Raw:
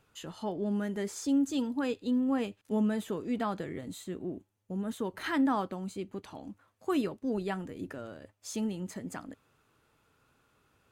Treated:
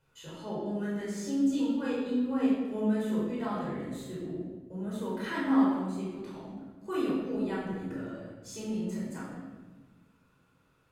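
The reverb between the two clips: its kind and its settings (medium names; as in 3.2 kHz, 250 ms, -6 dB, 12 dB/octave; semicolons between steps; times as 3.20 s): simulated room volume 1000 m³, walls mixed, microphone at 4.9 m; trim -10.5 dB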